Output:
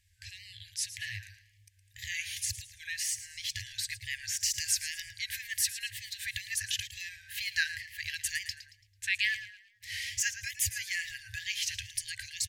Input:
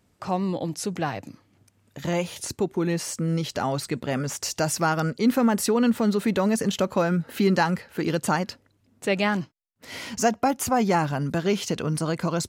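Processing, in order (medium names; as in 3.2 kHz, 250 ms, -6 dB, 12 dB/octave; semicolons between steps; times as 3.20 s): frequency-shifting echo 111 ms, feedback 37%, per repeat +38 Hz, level -13 dB; FFT band-reject 110–1600 Hz; wow and flutter 72 cents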